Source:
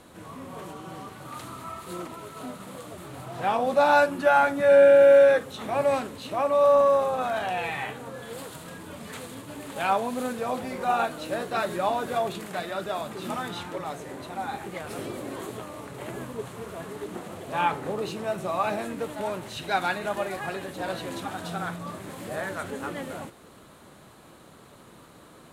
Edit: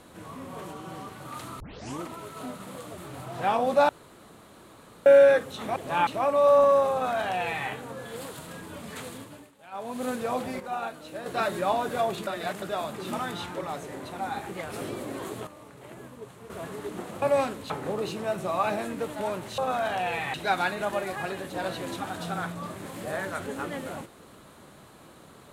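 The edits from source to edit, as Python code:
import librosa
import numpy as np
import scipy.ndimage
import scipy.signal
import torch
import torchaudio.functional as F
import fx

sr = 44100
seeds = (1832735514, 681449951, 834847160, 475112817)

y = fx.edit(x, sr, fx.tape_start(start_s=1.6, length_s=0.42),
    fx.room_tone_fill(start_s=3.89, length_s=1.17),
    fx.swap(start_s=5.76, length_s=0.48, other_s=17.39, other_length_s=0.31),
    fx.duplicate(start_s=7.09, length_s=0.76, to_s=19.58),
    fx.fade_down_up(start_s=9.3, length_s=0.97, db=-21.5, fade_s=0.39),
    fx.clip_gain(start_s=10.77, length_s=0.66, db=-8.0),
    fx.reverse_span(start_s=12.44, length_s=0.35),
    fx.clip_gain(start_s=15.64, length_s=1.03, db=-8.5), tone=tone)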